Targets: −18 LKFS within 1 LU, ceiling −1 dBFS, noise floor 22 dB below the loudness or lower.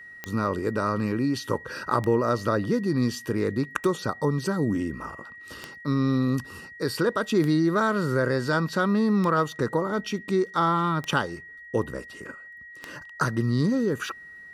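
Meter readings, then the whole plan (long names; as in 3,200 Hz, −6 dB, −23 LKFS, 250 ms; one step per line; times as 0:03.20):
number of clicks 8; interfering tone 1,900 Hz; level of the tone −42 dBFS; integrated loudness −25.5 LKFS; sample peak −7.5 dBFS; target loudness −18.0 LKFS
→ click removal
notch filter 1,900 Hz, Q 30
level +7.5 dB
brickwall limiter −1 dBFS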